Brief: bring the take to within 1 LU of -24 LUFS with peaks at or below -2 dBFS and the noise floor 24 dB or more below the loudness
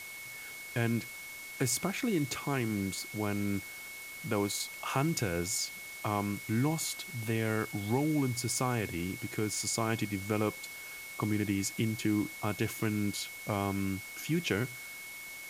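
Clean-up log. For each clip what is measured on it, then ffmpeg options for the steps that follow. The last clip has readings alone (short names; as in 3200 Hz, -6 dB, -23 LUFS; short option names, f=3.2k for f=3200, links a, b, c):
steady tone 2200 Hz; tone level -44 dBFS; noise floor -45 dBFS; noise floor target -58 dBFS; loudness -33.5 LUFS; peak -16.0 dBFS; loudness target -24.0 LUFS
-> -af "bandreject=f=2.2k:w=30"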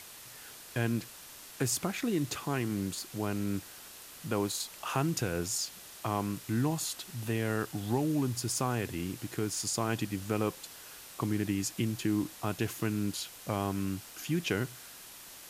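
steady tone none; noise floor -50 dBFS; noise floor target -58 dBFS
-> -af "afftdn=nr=8:nf=-50"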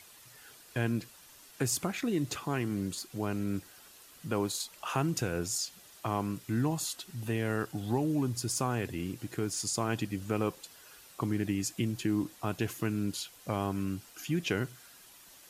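noise floor -56 dBFS; noise floor target -58 dBFS
-> -af "afftdn=nr=6:nf=-56"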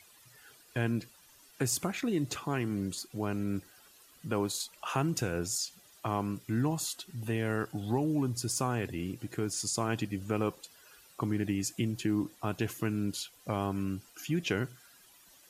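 noise floor -60 dBFS; loudness -33.5 LUFS; peak -16.0 dBFS; loudness target -24.0 LUFS
-> -af "volume=9.5dB"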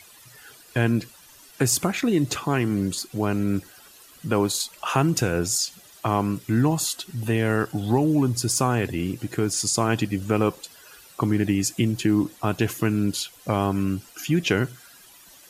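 loudness -24.0 LUFS; peak -6.5 dBFS; noise floor -50 dBFS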